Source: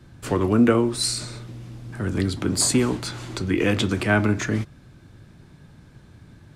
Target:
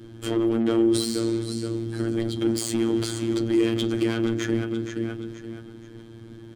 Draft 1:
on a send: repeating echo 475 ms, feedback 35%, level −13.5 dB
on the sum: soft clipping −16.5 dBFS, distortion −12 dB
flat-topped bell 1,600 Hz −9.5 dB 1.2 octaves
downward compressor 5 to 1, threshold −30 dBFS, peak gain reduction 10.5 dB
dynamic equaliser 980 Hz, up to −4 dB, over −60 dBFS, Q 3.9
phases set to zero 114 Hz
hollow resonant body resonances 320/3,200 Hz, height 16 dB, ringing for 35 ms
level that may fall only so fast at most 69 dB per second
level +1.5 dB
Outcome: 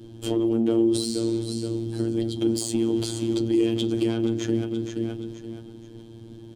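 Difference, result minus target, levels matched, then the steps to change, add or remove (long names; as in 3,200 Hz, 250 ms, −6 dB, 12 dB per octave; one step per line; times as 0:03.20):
2,000 Hz band −8.0 dB; soft clipping: distortion −6 dB
change: soft clipping −23.5 dBFS, distortion −6 dB
remove: flat-topped bell 1,600 Hz −9.5 dB 1.2 octaves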